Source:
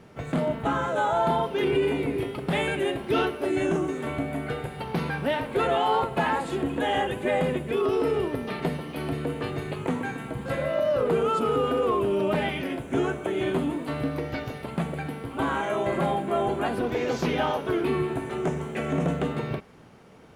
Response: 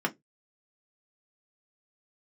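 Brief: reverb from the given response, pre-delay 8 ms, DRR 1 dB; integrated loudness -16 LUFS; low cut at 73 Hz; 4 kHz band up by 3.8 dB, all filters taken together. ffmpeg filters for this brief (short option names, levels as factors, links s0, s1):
-filter_complex "[0:a]highpass=73,equalizer=f=4000:t=o:g=5.5,asplit=2[s0][s1];[1:a]atrim=start_sample=2205,adelay=8[s2];[s1][s2]afir=irnorm=-1:irlink=0,volume=0.316[s3];[s0][s3]amix=inputs=2:normalize=0,volume=2.37"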